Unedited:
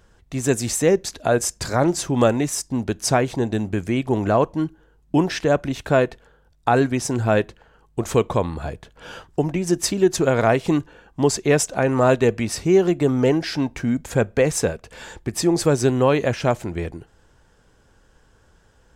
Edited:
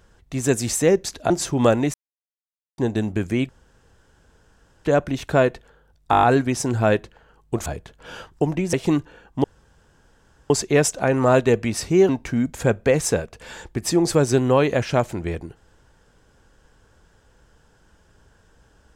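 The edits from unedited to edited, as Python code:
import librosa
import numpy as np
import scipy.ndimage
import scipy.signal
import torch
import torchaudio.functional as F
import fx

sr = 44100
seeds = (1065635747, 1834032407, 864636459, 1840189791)

y = fx.edit(x, sr, fx.cut(start_s=1.3, length_s=0.57),
    fx.silence(start_s=2.51, length_s=0.84),
    fx.room_tone_fill(start_s=4.06, length_s=1.36),
    fx.stutter(start_s=6.68, slice_s=0.02, count=7),
    fx.cut(start_s=8.11, length_s=0.52),
    fx.cut(start_s=9.7, length_s=0.84),
    fx.insert_room_tone(at_s=11.25, length_s=1.06),
    fx.cut(start_s=12.84, length_s=0.76), tone=tone)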